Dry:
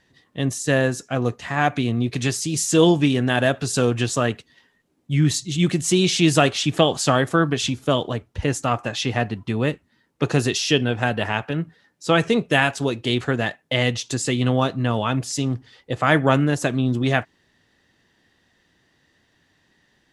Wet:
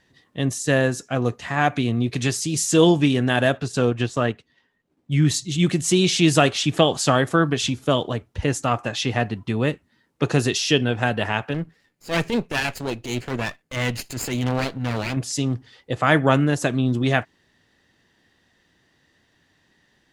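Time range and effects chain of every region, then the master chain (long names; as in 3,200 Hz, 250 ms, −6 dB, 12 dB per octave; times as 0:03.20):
0:03.57–0:05.12: high-shelf EQ 5,600 Hz −11 dB + transient designer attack −1 dB, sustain −6 dB
0:11.54–0:15.17: lower of the sound and its delayed copy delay 0.43 ms + transient designer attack −11 dB, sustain −3 dB
whole clip: no processing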